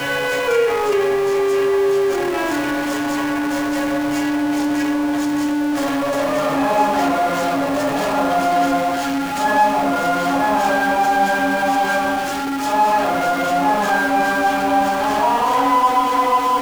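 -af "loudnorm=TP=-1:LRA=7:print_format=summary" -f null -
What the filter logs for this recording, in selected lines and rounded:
Input Integrated:    -17.7 LUFS
Input True Peak:      -5.6 dBTP
Input LRA:             2.4 LU
Input Threshold:     -27.7 LUFS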